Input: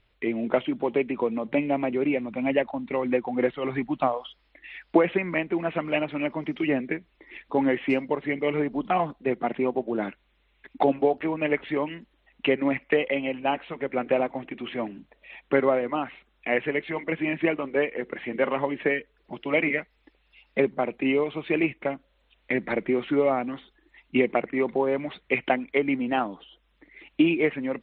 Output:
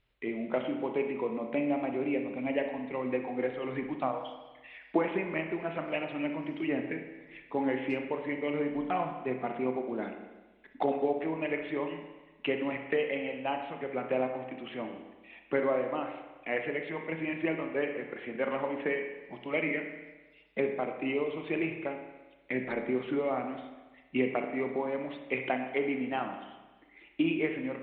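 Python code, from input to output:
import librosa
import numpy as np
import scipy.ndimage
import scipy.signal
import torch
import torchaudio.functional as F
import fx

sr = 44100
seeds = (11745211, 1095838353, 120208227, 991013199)

y = fx.rev_spring(x, sr, rt60_s=1.2, pass_ms=(31, 55), chirp_ms=80, drr_db=4.5)
y = F.gain(torch.from_numpy(y), -8.0).numpy()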